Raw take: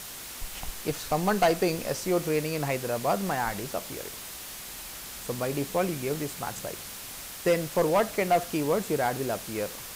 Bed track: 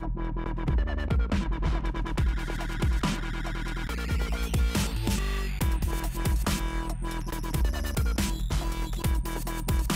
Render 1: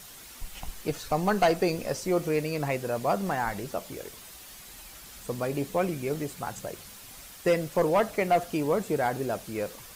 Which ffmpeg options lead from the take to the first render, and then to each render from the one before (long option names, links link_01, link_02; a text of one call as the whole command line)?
ffmpeg -i in.wav -af "afftdn=noise_reduction=8:noise_floor=-41" out.wav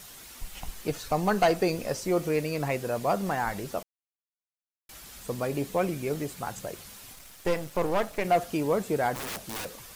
ffmpeg -i in.wav -filter_complex "[0:a]asettb=1/sr,asplit=3[link_01][link_02][link_03];[link_01]atrim=end=7.134[link_04];[link_02]atrim=start=7.13:end=8.25,asetpts=PTS-STARTPTS,afade=type=in:duration=0.004:curve=qsin,afade=type=out:start_time=1.116:duration=0.004:curve=qsin,aeval=exprs='if(lt(val(0),0),0.251*val(0),val(0))':channel_layout=same[link_05];[link_03]atrim=start=8.246[link_06];[link_04][link_05]acrossfade=duration=0.004:curve1=hsin:curve2=qsin[link_07];[link_07][link_06]acrossfade=duration=0.004:curve1=qsin:curve2=hsin,asplit=3[link_08][link_09][link_10];[link_08]afade=type=out:start_time=9.14:duration=0.02[link_11];[link_09]aeval=exprs='(mod(33.5*val(0)+1,2)-1)/33.5':channel_layout=same,afade=type=in:start_time=9.14:duration=0.02,afade=type=out:start_time=9.64:duration=0.02[link_12];[link_10]afade=type=in:start_time=9.64:duration=0.02[link_13];[link_11][link_12][link_13]amix=inputs=3:normalize=0,asplit=3[link_14][link_15][link_16];[link_14]atrim=end=3.83,asetpts=PTS-STARTPTS,afade=type=out:start_time=3.826:duration=0.004:curve=hsin[link_17];[link_15]atrim=start=3.83:end=4.89,asetpts=PTS-STARTPTS,volume=0[link_18];[link_16]atrim=start=4.89,asetpts=PTS-STARTPTS,afade=type=in:duration=0.004:curve=hsin[link_19];[link_17][link_18][link_19]concat=n=3:v=0:a=1" out.wav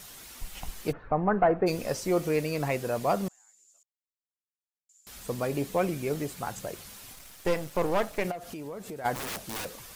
ffmpeg -i in.wav -filter_complex "[0:a]asplit=3[link_01][link_02][link_03];[link_01]afade=type=out:start_time=0.91:duration=0.02[link_04];[link_02]lowpass=frequency=1700:width=0.5412,lowpass=frequency=1700:width=1.3066,afade=type=in:start_time=0.91:duration=0.02,afade=type=out:start_time=1.66:duration=0.02[link_05];[link_03]afade=type=in:start_time=1.66:duration=0.02[link_06];[link_04][link_05][link_06]amix=inputs=3:normalize=0,asettb=1/sr,asplit=3[link_07][link_08][link_09];[link_07]atrim=end=3.284[link_10];[link_08]atrim=start=3.28:end=5.07,asetpts=PTS-STARTPTS,afade=type=in:duration=0.004:curve=qsin,afade=type=out:start_time=1.786:duration=0.004:curve=qsin,bandpass=frequency=7100:width_type=q:width=19[link_11];[link_09]atrim=start=5.066[link_12];[link_10][link_11]acrossfade=duration=0.004:curve1=hsin:curve2=qsin[link_13];[link_13][link_12]acrossfade=duration=0.004:curve1=qsin:curve2=hsin,asplit=3[link_14][link_15][link_16];[link_14]afade=type=out:start_time=8.3:duration=0.02[link_17];[link_15]acompressor=threshold=-37dB:ratio=5:attack=3.2:release=140:knee=1:detection=peak,afade=type=in:start_time=8.3:duration=0.02,afade=type=out:start_time=9.04:duration=0.02[link_18];[link_16]afade=type=in:start_time=9.04:duration=0.02[link_19];[link_17][link_18][link_19]amix=inputs=3:normalize=0" out.wav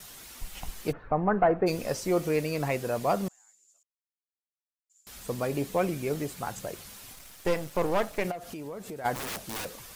ffmpeg -i in.wav -af "agate=range=-33dB:threshold=-58dB:ratio=3:detection=peak" out.wav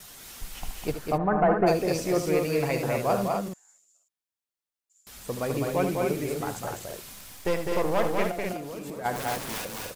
ffmpeg -i in.wav -af "aecho=1:1:75.8|204.1|253.6:0.316|0.631|0.562" out.wav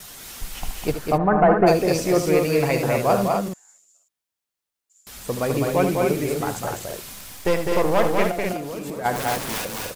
ffmpeg -i in.wav -af "volume=6dB" out.wav